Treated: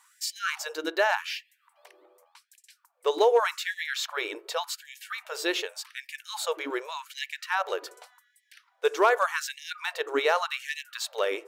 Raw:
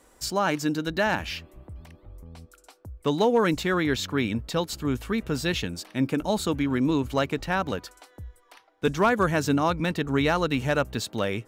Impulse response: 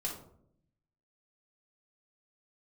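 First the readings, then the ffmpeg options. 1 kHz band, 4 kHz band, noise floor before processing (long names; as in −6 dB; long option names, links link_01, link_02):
−1.0 dB, 0.0 dB, −59 dBFS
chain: -filter_complex "[0:a]asplit=2[link_01][link_02];[1:a]atrim=start_sample=2205,lowpass=2000[link_03];[link_02][link_03]afir=irnorm=-1:irlink=0,volume=-15dB[link_04];[link_01][link_04]amix=inputs=2:normalize=0,afftfilt=real='re*gte(b*sr/1024,300*pow(1700/300,0.5+0.5*sin(2*PI*0.86*pts/sr)))':imag='im*gte(b*sr/1024,300*pow(1700/300,0.5+0.5*sin(2*PI*0.86*pts/sr)))':win_size=1024:overlap=0.75"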